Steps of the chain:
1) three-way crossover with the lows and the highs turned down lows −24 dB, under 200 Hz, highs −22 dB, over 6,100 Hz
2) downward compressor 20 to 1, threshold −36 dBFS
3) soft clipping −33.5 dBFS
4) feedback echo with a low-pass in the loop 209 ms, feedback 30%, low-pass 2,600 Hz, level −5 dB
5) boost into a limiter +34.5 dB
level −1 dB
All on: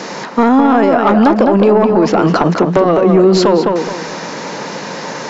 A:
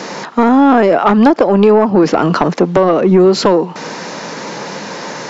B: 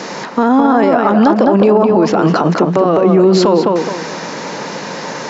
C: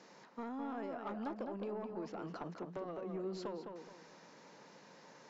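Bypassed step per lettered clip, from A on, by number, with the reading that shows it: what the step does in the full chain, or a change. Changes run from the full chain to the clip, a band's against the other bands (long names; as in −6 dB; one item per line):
4, change in momentary loudness spread +1 LU
3, distortion level −17 dB
5, change in crest factor +3.5 dB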